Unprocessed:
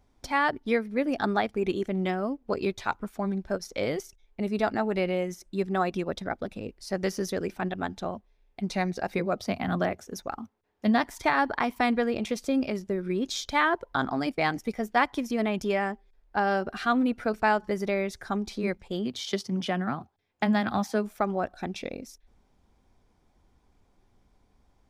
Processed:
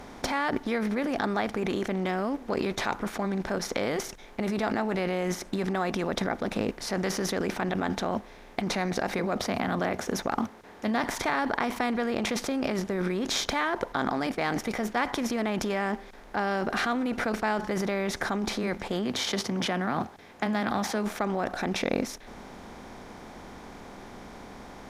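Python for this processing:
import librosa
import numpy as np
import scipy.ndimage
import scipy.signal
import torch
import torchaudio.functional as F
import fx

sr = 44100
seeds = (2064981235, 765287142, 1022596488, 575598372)

p1 = fx.bin_compress(x, sr, power=0.6)
p2 = fx.over_compress(p1, sr, threshold_db=-29.0, ratio=-0.5)
p3 = p1 + (p2 * 10.0 ** (0.5 / 20.0))
y = p3 * 10.0 ** (-7.5 / 20.0)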